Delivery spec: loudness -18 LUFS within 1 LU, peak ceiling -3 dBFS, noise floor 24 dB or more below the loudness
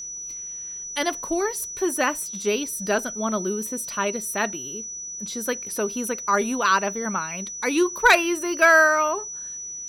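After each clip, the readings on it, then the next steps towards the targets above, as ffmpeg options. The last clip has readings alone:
steady tone 5900 Hz; tone level -32 dBFS; loudness -23.0 LUFS; peak -6.5 dBFS; loudness target -18.0 LUFS
-> -af "bandreject=f=5.9k:w=30"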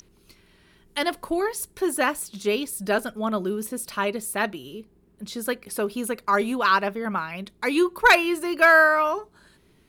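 steady tone none; loudness -23.0 LUFS; peak -6.5 dBFS; loudness target -18.0 LUFS
-> -af "volume=5dB,alimiter=limit=-3dB:level=0:latency=1"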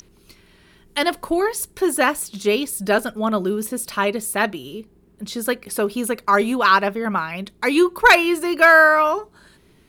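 loudness -18.5 LUFS; peak -3.0 dBFS; noise floor -54 dBFS

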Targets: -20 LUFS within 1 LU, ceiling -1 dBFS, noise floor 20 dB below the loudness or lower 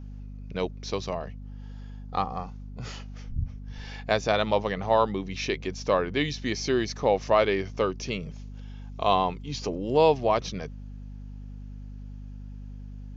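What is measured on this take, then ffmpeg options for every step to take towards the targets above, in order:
hum 50 Hz; harmonics up to 250 Hz; hum level -37 dBFS; loudness -27.0 LUFS; peak -7.0 dBFS; loudness target -20.0 LUFS
-> -af "bandreject=f=50:t=h:w=4,bandreject=f=100:t=h:w=4,bandreject=f=150:t=h:w=4,bandreject=f=200:t=h:w=4,bandreject=f=250:t=h:w=4"
-af "volume=7dB,alimiter=limit=-1dB:level=0:latency=1"

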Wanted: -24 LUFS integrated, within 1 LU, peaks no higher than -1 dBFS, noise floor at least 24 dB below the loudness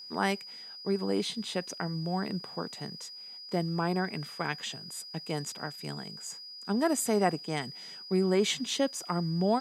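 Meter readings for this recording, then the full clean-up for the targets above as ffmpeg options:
steady tone 4900 Hz; tone level -43 dBFS; loudness -32.0 LUFS; peak -11.0 dBFS; loudness target -24.0 LUFS
-> -af "bandreject=f=4.9k:w=30"
-af "volume=8dB"

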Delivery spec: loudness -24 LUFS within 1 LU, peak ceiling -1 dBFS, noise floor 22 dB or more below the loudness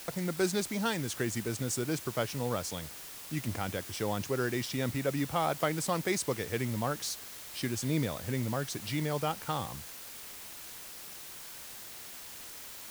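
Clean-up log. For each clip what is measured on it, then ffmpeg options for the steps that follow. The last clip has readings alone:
noise floor -46 dBFS; noise floor target -57 dBFS; loudness -34.5 LUFS; peak -15.5 dBFS; loudness target -24.0 LUFS
-> -af "afftdn=nr=11:nf=-46"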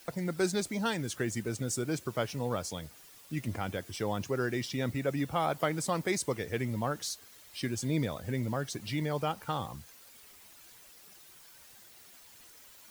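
noise floor -56 dBFS; loudness -33.5 LUFS; peak -16.5 dBFS; loudness target -24.0 LUFS
-> -af "volume=9.5dB"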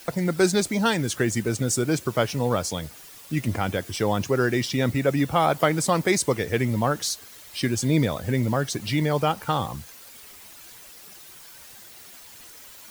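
loudness -24.0 LUFS; peak -7.0 dBFS; noise floor -46 dBFS

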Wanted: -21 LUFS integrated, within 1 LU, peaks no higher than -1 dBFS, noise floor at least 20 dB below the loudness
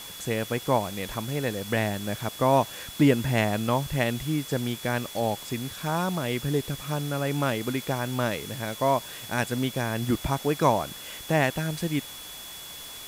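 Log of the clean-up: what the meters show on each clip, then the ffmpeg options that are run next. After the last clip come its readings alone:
steady tone 3400 Hz; tone level -43 dBFS; noise floor -41 dBFS; noise floor target -48 dBFS; loudness -27.5 LUFS; peak -8.0 dBFS; loudness target -21.0 LUFS
-> -af "bandreject=f=3.4k:w=30"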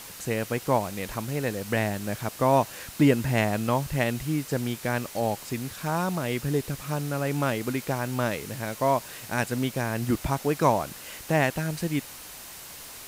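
steady tone none; noise floor -43 dBFS; noise floor target -48 dBFS
-> -af "afftdn=nr=6:nf=-43"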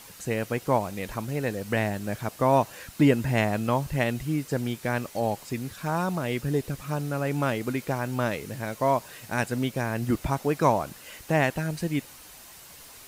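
noise floor -48 dBFS; loudness -27.5 LUFS; peak -8.5 dBFS; loudness target -21.0 LUFS
-> -af "volume=6.5dB"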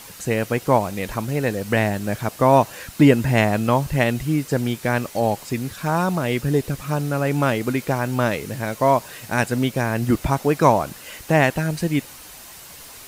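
loudness -21.0 LUFS; peak -2.0 dBFS; noise floor -41 dBFS

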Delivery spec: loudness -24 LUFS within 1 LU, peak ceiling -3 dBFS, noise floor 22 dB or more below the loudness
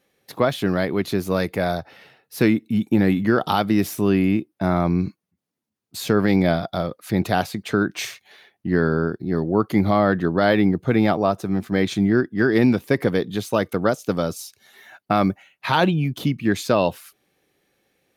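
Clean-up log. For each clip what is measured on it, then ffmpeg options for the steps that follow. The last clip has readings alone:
loudness -21.5 LUFS; peak -5.0 dBFS; loudness target -24.0 LUFS
-> -af "volume=-2.5dB"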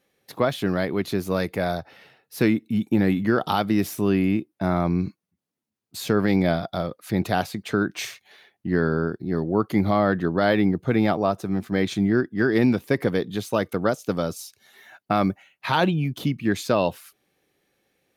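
loudness -24.0 LUFS; peak -7.5 dBFS; noise floor -83 dBFS

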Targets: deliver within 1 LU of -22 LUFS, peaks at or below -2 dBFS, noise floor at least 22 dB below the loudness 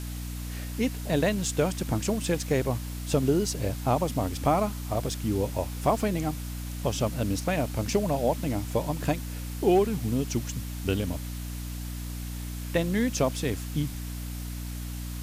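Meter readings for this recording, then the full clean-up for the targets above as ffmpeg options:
hum 60 Hz; harmonics up to 300 Hz; hum level -33 dBFS; noise floor -35 dBFS; noise floor target -51 dBFS; loudness -29.0 LUFS; peak -11.0 dBFS; loudness target -22.0 LUFS
-> -af "bandreject=f=60:t=h:w=4,bandreject=f=120:t=h:w=4,bandreject=f=180:t=h:w=4,bandreject=f=240:t=h:w=4,bandreject=f=300:t=h:w=4"
-af "afftdn=nr=16:nf=-35"
-af "volume=7dB"

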